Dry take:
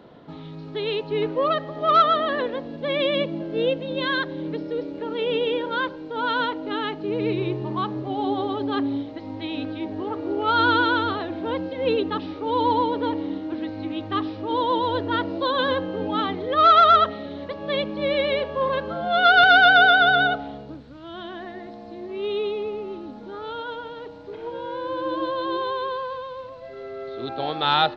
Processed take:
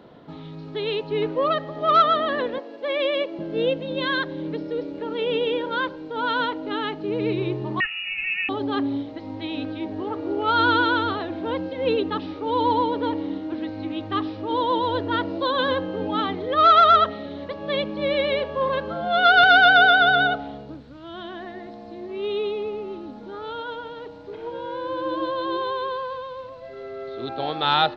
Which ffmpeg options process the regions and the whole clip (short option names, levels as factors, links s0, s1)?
-filter_complex "[0:a]asettb=1/sr,asplit=3[s0][s1][s2];[s0]atrim=end=2.584[s3];[s1]atrim=start=2.58:end=3.39,asetpts=PTS-STARTPTS,afade=t=in:d=0.004:c=qsin,afade=t=out:st=0.806:d=0.004:c=qsin,highpass=f=340:w=0.5412,highpass=f=340:w=1.3066,equalizer=f=3600:t=o:w=0.29:g=-4.5[s4];[s2]atrim=start=3.386[s5];[s3][s4]acrossfade=d=0.004:c1=hsin:c2=qsin[s6];[s6][s5]acrossfade=d=0.004:c1=qsin:c2=hsin,asettb=1/sr,asplit=3[s7][s8][s9];[s7]atrim=end=7.804[s10];[s8]atrim=start=7.8:end=8.49,asetpts=PTS-STARTPTS,afade=t=in:d=0.004:c=qsin,afade=t=out:st=0.686:d=0.004:c=qsin,aecho=1:1:1.8:0.63,atrim=end_sample=30429,lowpass=f=2600:t=q:w=0.5098,lowpass=f=2600:t=q:w=0.6013,lowpass=f=2600:t=q:w=0.9,lowpass=f=2600:t=q:w=2.563,afreqshift=-3000,lowshelf=f=100:g=11[s11];[s9]atrim=start=8.486[s12];[s10][s11]acrossfade=d=0.004:c1=hsin:c2=qsin[s13];[s13][s12]acrossfade=d=0.004:c1=qsin:c2=hsin"